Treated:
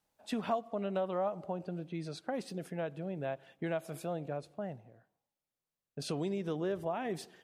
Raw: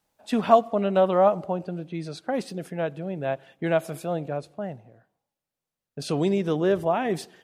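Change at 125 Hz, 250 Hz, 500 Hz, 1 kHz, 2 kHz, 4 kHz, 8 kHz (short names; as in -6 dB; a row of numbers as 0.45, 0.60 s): -9.5, -10.5, -12.5, -13.5, -10.5, -8.5, -7.5 dB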